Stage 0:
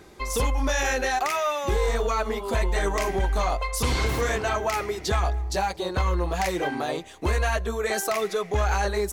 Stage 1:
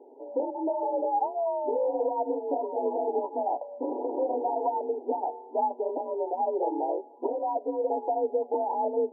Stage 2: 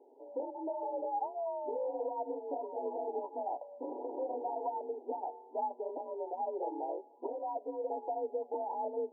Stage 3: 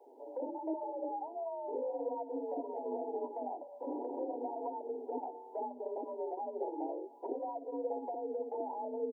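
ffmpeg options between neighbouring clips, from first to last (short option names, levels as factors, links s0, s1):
-af "afreqshift=50,afftfilt=real='re*between(b*sr/4096,240,980)':imag='im*between(b*sr/4096,240,980)':win_size=4096:overlap=0.75"
-af "lowshelf=f=180:g=-9,volume=0.398"
-filter_complex "[0:a]acrossover=split=420[s0][s1];[s1]acompressor=threshold=0.00501:ratio=6[s2];[s0][s2]amix=inputs=2:normalize=0,acrossover=split=450[s3][s4];[s3]adelay=60[s5];[s5][s4]amix=inputs=2:normalize=0,volume=2"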